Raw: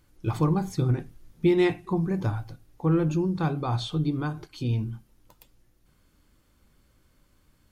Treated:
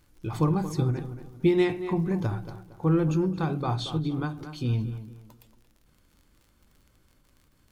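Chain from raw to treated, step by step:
surface crackle 35 per second −46 dBFS
on a send: tape delay 228 ms, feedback 38%, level −10.5 dB, low-pass 2,400 Hz
on the sum: every ending faded ahead of time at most 110 dB per second

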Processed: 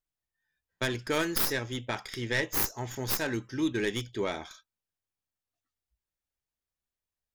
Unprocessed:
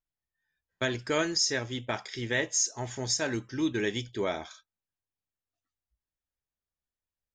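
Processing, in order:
stylus tracing distortion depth 0.19 ms
dynamic equaliser 650 Hz, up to −5 dB, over −46 dBFS, Q 5.2

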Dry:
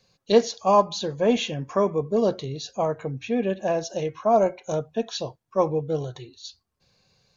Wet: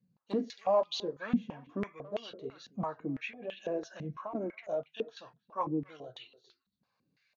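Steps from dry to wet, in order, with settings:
flat-topped bell 610 Hz −8.5 dB
0:02.74–0:04.35: compressor whose output falls as the input rises −29 dBFS, ratio −0.5
flanger 1.4 Hz, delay 6.1 ms, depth 4.9 ms, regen −44%
soft clipping −21 dBFS, distortion −19 dB
far-end echo of a speakerphone 280 ms, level −16 dB
band-pass on a step sequencer 6 Hz 200–3,000 Hz
level +8.5 dB

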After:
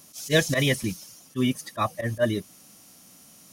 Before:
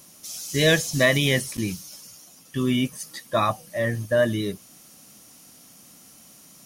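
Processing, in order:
volume swells 102 ms
phase-vocoder stretch with locked phases 0.53×

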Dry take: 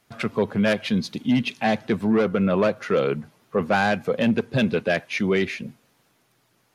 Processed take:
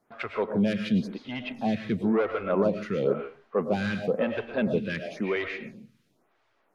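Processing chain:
low-pass filter 2,500 Hz 6 dB per octave
convolution reverb RT60 0.35 s, pre-delay 75 ms, DRR 5.5 dB
phaser with staggered stages 0.97 Hz
level −1.5 dB

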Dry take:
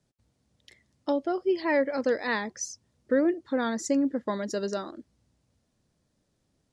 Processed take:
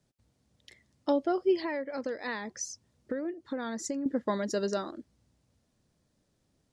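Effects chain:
0:01.64–0:04.06: downward compressor 6 to 1, threshold −32 dBFS, peak gain reduction 12.5 dB

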